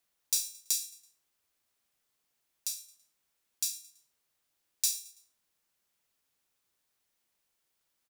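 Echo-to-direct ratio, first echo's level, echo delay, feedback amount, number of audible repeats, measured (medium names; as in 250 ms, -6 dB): -20.0 dB, -21.0 dB, 110 ms, 43%, 2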